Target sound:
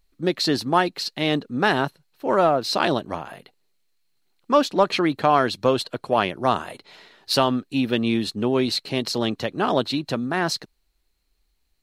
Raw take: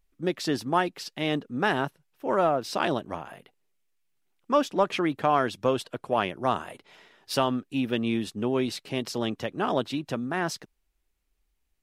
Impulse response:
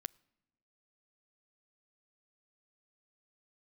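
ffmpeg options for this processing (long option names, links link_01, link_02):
-af "equalizer=frequency=4200:width=7.5:gain=14,volume=5dB"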